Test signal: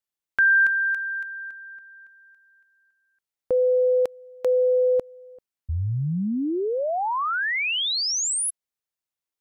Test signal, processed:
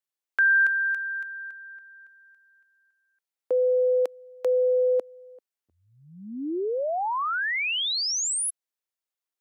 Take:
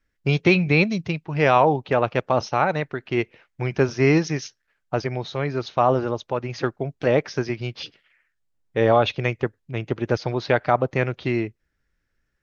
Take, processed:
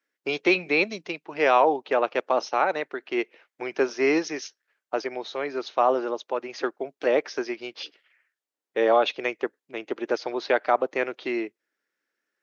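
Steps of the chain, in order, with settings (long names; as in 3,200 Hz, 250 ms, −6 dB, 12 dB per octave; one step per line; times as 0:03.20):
high-pass filter 300 Hz 24 dB per octave
level −2 dB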